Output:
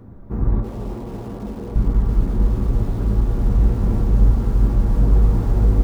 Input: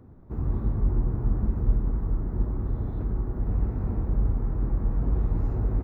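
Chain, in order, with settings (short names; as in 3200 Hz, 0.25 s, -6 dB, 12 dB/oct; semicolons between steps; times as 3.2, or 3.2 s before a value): 0.6–1.76 band-pass 600 Hz, Q 0.91; reverb, pre-delay 4 ms, DRR 3.5 dB; lo-fi delay 0.332 s, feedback 55%, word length 7-bit, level -14 dB; gain +7.5 dB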